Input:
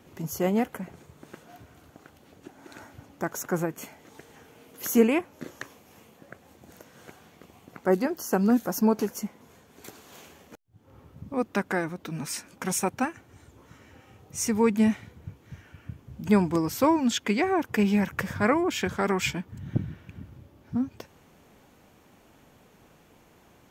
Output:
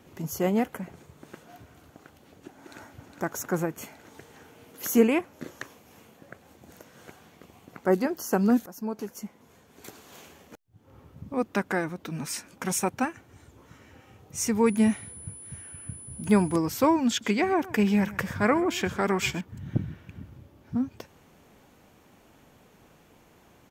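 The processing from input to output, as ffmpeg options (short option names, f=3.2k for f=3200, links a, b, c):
-filter_complex "[0:a]asplit=2[a][b];[b]afade=t=in:st=2.58:d=0.01,afade=t=out:st=3.08:d=0.01,aecho=0:1:410|820|1230|1640|2050|2460|2870|3280|3690|4100|4510|4920:0.446684|0.357347|0.285877|0.228702|0.182962|0.146369|0.117095|0.0936763|0.0749411|0.0599529|0.0479623|0.0383698[c];[a][c]amix=inputs=2:normalize=0,asettb=1/sr,asplit=3[d][e][f];[d]atrim=end=14.664[g];[e]atrim=start=14.66:end=16.56,asetpts=PTS-STARTPTS,afade=t=in:d=0.004:c=qsin,afade=t=out:st=1.896:d=0.004:c=qsin,aeval=exprs='val(0)+0.00794*sin(2*PI*10000*n/s)':c=same[h];[f]atrim=start=16.556[i];[g][h]acrossfade=d=0.004:c1=hsin:c2=qsin[j];[j][i]acrossfade=d=0.004:c1=qsin:c2=hsin,asettb=1/sr,asplit=3[k][l][m];[k]atrim=end=17.084[n];[l]atrim=start=17.08:end=19.41,asetpts=PTS-STARTPTS,afade=t=in:d=0.004:c=qsin,afade=t=out:st=2.326:d=0.004:c=qsin,aecho=1:1:129:0.119,atrim=end_sample=102753[o];[m]atrim=start=19.406[p];[n][o]acrossfade=d=0.004:c1=hsin:c2=qsin[q];[q][p]acrossfade=d=0.004:c1=qsin:c2=hsin,asplit=2[r][s];[r]atrim=end=8.66,asetpts=PTS-STARTPTS,afade=t=out:st=8.656:d=0.004:c=hsin:silence=0.149624[t];[s]atrim=start=8.66,asetpts=PTS-STARTPTS,afade=t=in:d=1.22:silence=0.149624[u];[t][u]concat=n=2:v=0:a=1"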